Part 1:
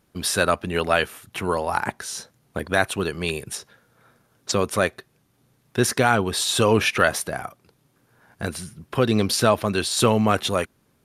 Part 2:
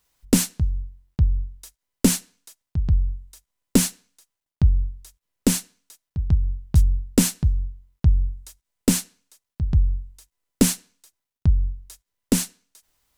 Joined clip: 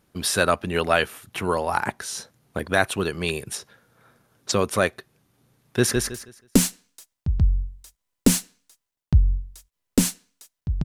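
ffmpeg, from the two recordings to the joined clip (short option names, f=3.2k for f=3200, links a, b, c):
-filter_complex "[0:a]apad=whole_dur=10.84,atrim=end=10.84,atrim=end=5.962[a];[1:a]atrim=start=1.448:end=6.33[b];[a][b]acrossfade=d=0.004:c1=hsin:c2=hsin,asplit=2[c][d];[d]afade=t=in:st=5.64:d=0.01,afade=t=out:st=5.96:d=0.01,aecho=0:1:160|320|480|640:0.668344|0.167086|0.0417715|0.0104429[e];[c][e]amix=inputs=2:normalize=0"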